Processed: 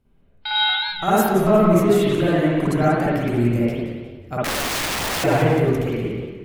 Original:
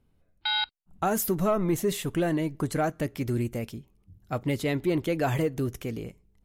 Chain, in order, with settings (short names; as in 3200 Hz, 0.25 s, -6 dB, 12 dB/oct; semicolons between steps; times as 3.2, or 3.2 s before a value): spring tank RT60 1.3 s, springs 51/56 ms, chirp 60 ms, DRR -9 dB; 4.44–5.24 wrapped overs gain 19.5 dB; warbling echo 0.18 s, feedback 37%, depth 202 cents, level -11 dB